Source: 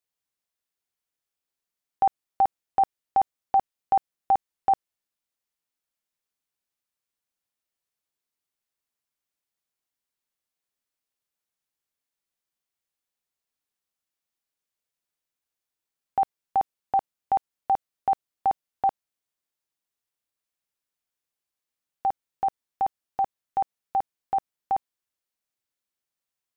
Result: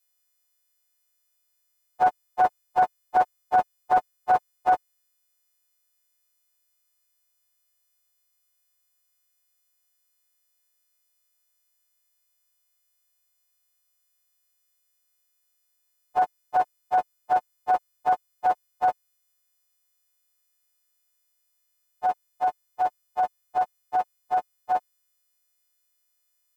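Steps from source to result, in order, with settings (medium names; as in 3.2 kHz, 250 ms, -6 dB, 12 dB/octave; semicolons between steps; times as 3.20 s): partials quantised in pitch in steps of 3 st; loudspeaker Doppler distortion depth 0.27 ms; trim +1.5 dB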